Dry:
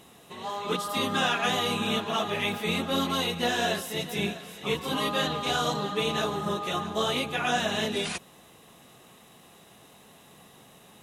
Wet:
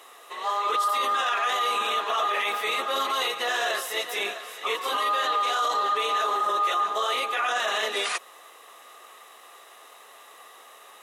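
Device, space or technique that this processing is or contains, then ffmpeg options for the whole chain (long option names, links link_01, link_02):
laptop speaker: -af "highpass=frequency=440:width=0.5412,highpass=frequency=440:width=1.3066,equalizer=frequency=1200:width_type=o:width=0.25:gain=12,equalizer=frequency=1900:width_type=o:width=0.3:gain=6,alimiter=limit=-21dB:level=0:latency=1:release=16,volume=3.5dB"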